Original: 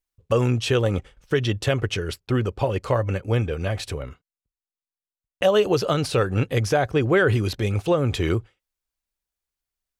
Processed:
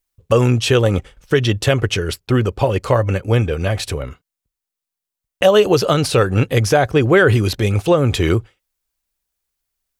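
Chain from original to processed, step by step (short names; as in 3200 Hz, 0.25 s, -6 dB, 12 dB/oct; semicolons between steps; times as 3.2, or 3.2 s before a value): high shelf 7800 Hz +5 dB; gain +6.5 dB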